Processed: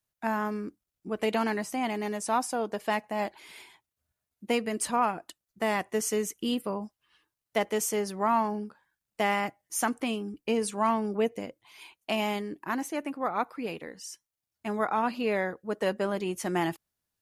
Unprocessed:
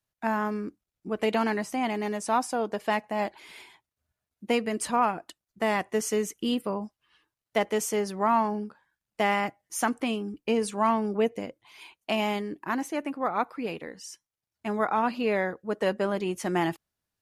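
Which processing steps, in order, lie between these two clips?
treble shelf 7.5 kHz +6.5 dB; trim -2 dB

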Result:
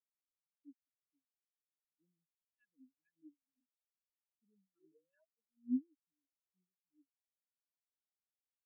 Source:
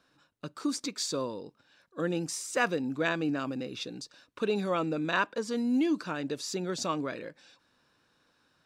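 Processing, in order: amplifier tone stack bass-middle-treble 6-0-2; painted sound rise, 4.75–5.27 s, 340–680 Hz -53 dBFS; LFO low-pass sine 2.4 Hz 280–3300 Hz; spectral contrast expander 4:1; trim +5 dB

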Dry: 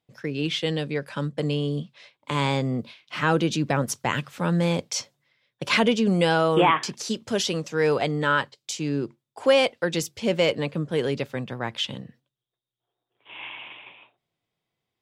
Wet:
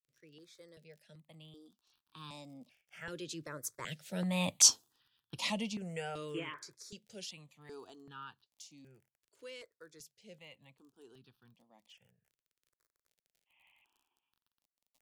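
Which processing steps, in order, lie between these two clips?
Doppler pass-by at 4.72 s, 22 m/s, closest 2.7 m; treble shelf 3.5 kHz +10 dB; crackle 39 per s -56 dBFS; stepped phaser 2.6 Hz 210–2100 Hz; trim +2.5 dB

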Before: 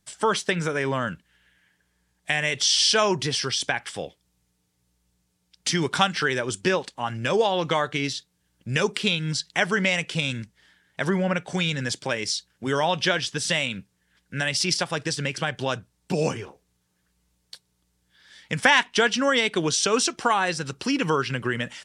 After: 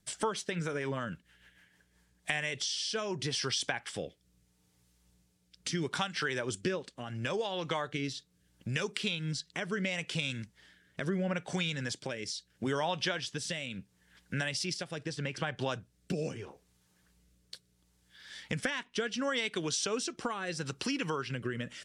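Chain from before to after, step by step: 15.05–15.62 s: treble shelf 4.4 kHz -9.5 dB; compression 2.5:1, threshold -37 dBFS, peak gain reduction 15.5 dB; rotary cabinet horn 6.7 Hz, later 0.75 Hz, at 1.53 s; trim +3 dB

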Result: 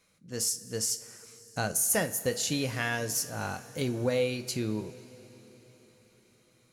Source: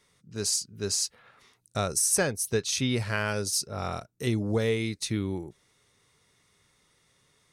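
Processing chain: tape speed +12%; two-slope reverb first 0.3 s, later 5 s, from -19 dB, DRR 7.5 dB; trim -2.5 dB

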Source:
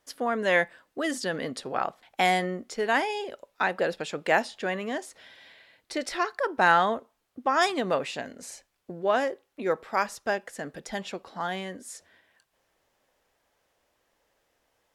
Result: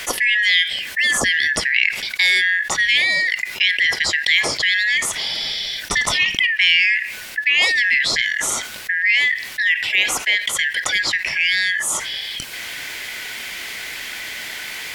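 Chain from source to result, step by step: four frequency bands reordered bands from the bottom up 4123; level flattener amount 70%; trim +4 dB

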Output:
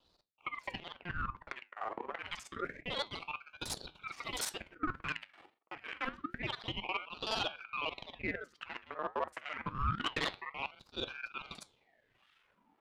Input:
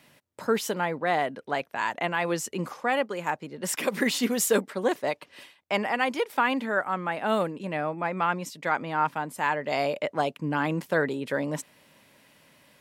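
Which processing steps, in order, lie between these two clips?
time reversed locally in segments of 42 ms; high-pass 350 Hz 24 dB/octave; band-stop 1.8 kHz, Q 26; power-law waveshaper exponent 1.4; in parallel at 0 dB: peak limiter -18.5 dBFS, peak gain reduction 7 dB; on the sum: LFO band-pass sine 1.4 Hz 540–2500 Hz; slow attack 470 ms; flange 1.4 Hz, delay 6.5 ms, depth 4.9 ms, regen +78%; saturation -37 dBFS, distortion -17 dB; ring modulator with a swept carrier 1.1 kHz, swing 80%, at 0.27 Hz; trim +15 dB

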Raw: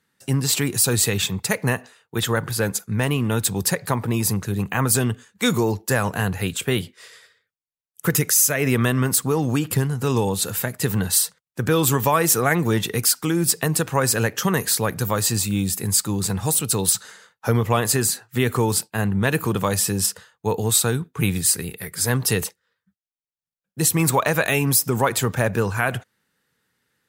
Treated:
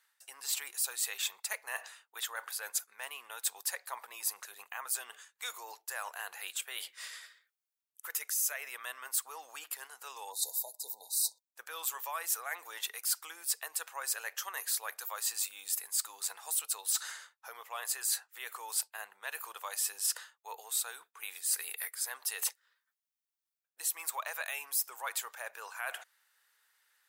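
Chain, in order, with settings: reverse; compression 12:1, threshold -31 dBFS, peak gain reduction 18.5 dB; reverse; high-pass 680 Hz 24 dB/octave; tilt EQ +3.5 dB/octave; spectral selection erased 10.31–11.56 s, 1–3.6 kHz; treble shelf 2.4 kHz -9.5 dB

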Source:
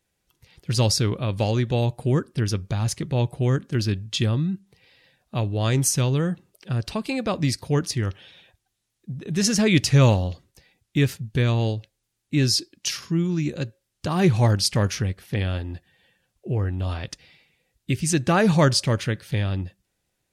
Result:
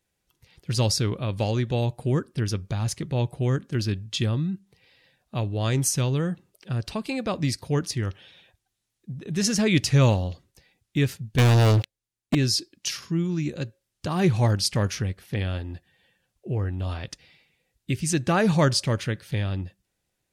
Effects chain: 11.38–12.35 s: waveshaping leveller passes 5; trim -2.5 dB

